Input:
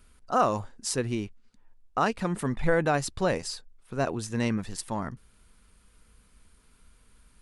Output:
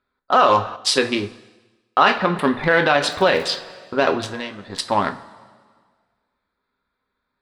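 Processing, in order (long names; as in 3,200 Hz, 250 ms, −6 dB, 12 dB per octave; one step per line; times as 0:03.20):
adaptive Wiener filter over 15 samples
high-pass filter 760 Hz 6 dB per octave
parametric band 7,900 Hz +8 dB 0.48 octaves
noise gate −57 dBFS, range −22 dB
high shelf with overshoot 5,300 Hz −13.5 dB, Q 3
0:03.09–0:03.55: surface crackle 43 per second −44 dBFS
0:04.30–0:04.70: downward compressor 6 to 1, threshold −47 dBFS, peak gain reduction 18 dB
coupled-rooms reverb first 0.25 s, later 1.7 s, from −18 dB, DRR 4.5 dB
boost into a limiter +21 dB
0:00.76–0:02.39: multiband upward and downward expander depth 40%
level −3.5 dB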